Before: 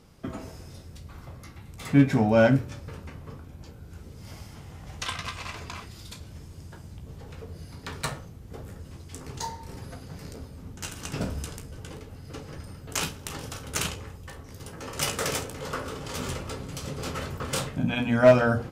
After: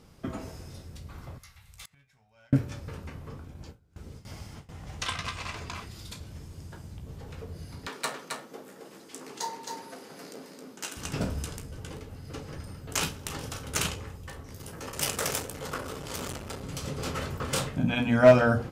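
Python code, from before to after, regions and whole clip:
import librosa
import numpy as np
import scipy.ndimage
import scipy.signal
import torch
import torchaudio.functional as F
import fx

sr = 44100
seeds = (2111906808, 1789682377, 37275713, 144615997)

y = fx.chain(x, sr, fx.tone_stack(knobs='10-0-10'),
    fx.gate_flip(shuts_db=-31.0, range_db=-28), at=(1.38, 2.53))
y = fx.chain(y, sr, fx.peak_eq(hz=12000.0, db=-7.0, octaves=0.21),
    fx.gate_hold(open_db=-34.0, close_db=-43.0, hold_ms=71.0, range_db=-21, attack_ms=1.4, release_ms=100.0), at=(3.29, 5.74))
y = fx.chain(y, sr, fx.highpass(hz=240.0, slope=24),
    fx.echo_single(ms=268, db=-4.5), at=(7.87, 10.97))
y = fx.chain(y, sr, fx.high_shelf(hz=9200.0, db=8.5),
    fx.transformer_sat(knee_hz=2200.0), at=(14.55, 16.63))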